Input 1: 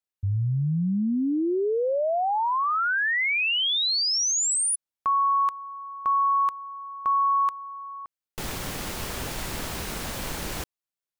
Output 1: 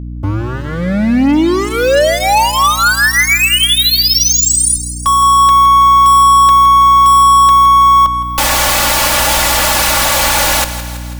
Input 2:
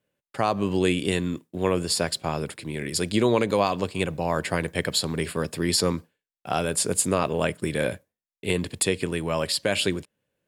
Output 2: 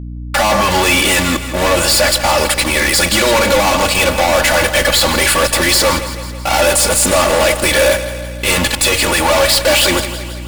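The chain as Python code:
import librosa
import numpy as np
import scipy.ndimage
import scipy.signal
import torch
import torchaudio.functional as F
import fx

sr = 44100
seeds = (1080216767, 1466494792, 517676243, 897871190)

p1 = fx.low_shelf_res(x, sr, hz=470.0, db=-13.5, q=1.5)
p2 = fx.fuzz(p1, sr, gain_db=48.0, gate_db=-51.0)
p3 = p2 + 0.86 * np.pad(p2, (int(3.5 * sr / 1000.0), 0))[:len(p2)]
p4 = fx.add_hum(p3, sr, base_hz=60, snr_db=12)
y = p4 + fx.echo_feedback(p4, sr, ms=164, feedback_pct=58, wet_db=-12.5, dry=0)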